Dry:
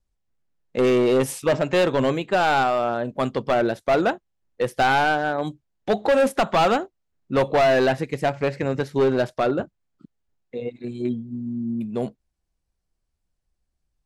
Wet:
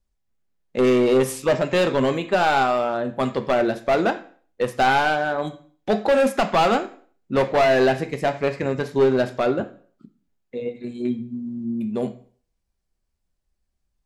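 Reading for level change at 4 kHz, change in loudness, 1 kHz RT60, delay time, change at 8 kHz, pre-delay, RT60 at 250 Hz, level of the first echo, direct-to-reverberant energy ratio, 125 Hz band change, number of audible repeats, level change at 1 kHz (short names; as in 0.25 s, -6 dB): +0.5 dB, +0.5 dB, 0.50 s, none, +0.5 dB, 3 ms, 0.50 s, none, 7.0 dB, -1.0 dB, none, +0.5 dB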